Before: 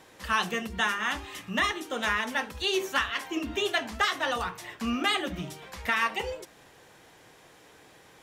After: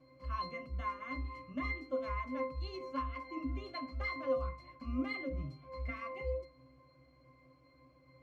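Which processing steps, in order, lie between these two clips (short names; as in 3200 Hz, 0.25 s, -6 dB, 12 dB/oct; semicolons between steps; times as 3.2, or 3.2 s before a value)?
octave resonator C, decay 0.29 s; gain +7.5 dB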